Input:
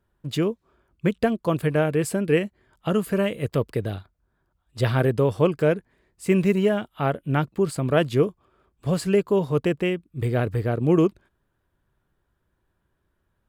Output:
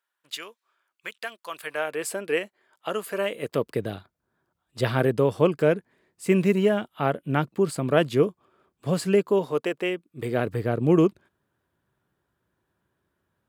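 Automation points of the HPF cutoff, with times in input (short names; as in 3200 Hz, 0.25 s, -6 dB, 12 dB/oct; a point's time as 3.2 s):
1.48 s 1400 Hz
2.07 s 530 Hz
3.14 s 530 Hz
3.78 s 150 Hz
9.13 s 150 Hz
9.7 s 450 Hz
10.77 s 110 Hz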